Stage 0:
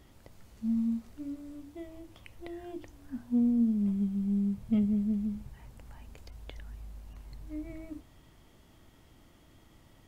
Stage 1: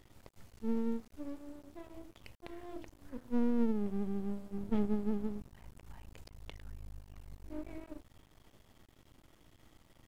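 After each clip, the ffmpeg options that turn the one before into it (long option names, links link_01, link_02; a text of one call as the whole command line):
ffmpeg -i in.wav -af "bandreject=frequency=66.86:width_type=h:width=4,bandreject=frequency=133.72:width_type=h:width=4,bandreject=frequency=200.58:width_type=h:width=4,bandreject=frequency=267.44:width_type=h:width=4,bandreject=frequency=334.3:width_type=h:width=4,aeval=exprs='max(val(0),0)':channel_layout=same" out.wav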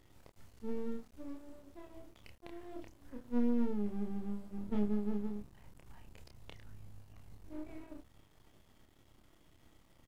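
ffmpeg -i in.wav -filter_complex "[0:a]asplit=2[link_01][link_02];[link_02]adelay=29,volume=-4dB[link_03];[link_01][link_03]amix=inputs=2:normalize=0,volume=-4dB" out.wav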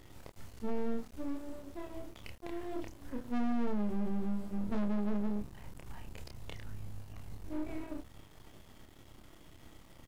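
ffmpeg -i in.wav -af "asoftclip=type=tanh:threshold=-35dB,volume=9dB" out.wav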